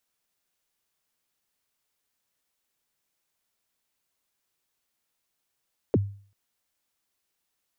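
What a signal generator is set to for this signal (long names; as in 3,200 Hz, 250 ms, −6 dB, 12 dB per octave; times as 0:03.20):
synth kick length 0.39 s, from 540 Hz, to 100 Hz, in 33 ms, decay 0.45 s, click off, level −15 dB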